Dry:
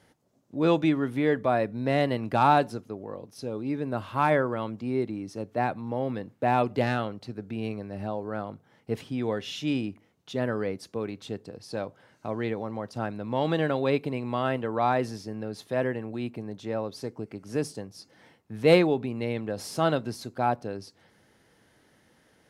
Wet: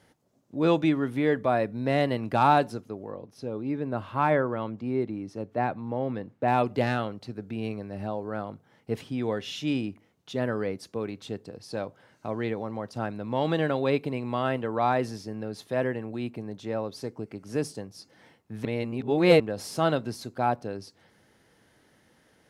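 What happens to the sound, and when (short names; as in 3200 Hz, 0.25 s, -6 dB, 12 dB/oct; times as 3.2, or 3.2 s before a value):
3.11–6.48 high shelf 4100 Hz -10 dB
18.65–19.4 reverse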